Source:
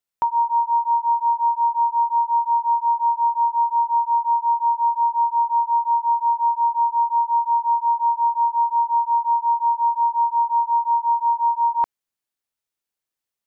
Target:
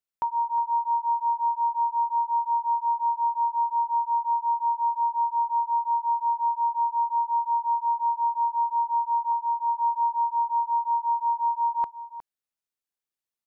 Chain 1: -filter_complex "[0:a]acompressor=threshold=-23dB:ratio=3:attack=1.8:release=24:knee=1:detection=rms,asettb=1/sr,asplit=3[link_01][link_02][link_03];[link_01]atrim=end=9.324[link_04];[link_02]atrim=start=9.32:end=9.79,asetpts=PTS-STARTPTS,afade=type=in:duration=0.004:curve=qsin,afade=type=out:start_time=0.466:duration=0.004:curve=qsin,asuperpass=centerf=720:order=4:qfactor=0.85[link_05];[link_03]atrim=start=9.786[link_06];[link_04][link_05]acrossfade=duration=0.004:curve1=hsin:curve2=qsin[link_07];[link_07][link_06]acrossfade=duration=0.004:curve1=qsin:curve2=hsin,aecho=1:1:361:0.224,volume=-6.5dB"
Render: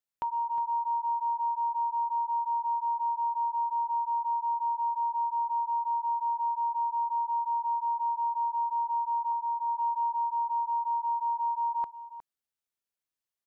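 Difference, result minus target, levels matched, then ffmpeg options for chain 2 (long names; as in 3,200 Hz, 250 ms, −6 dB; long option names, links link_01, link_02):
downward compressor: peak gain reduction +6 dB
-filter_complex "[0:a]asettb=1/sr,asplit=3[link_01][link_02][link_03];[link_01]atrim=end=9.324[link_04];[link_02]atrim=start=9.32:end=9.79,asetpts=PTS-STARTPTS,afade=type=in:duration=0.004:curve=qsin,afade=type=out:start_time=0.466:duration=0.004:curve=qsin,asuperpass=centerf=720:order=4:qfactor=0.85[link_05];[link_03]atrim=start=9.786[link_06];[link_04][link_05]acrossfade=duration=0.004:curve1=hsin:curve2=qsin[link_07];[link_07][link_06]acrossfade=duration=0.004:curve1=qsin:curve2=hsin,aecho=1:1:361:0.224,volume=-6.5dB"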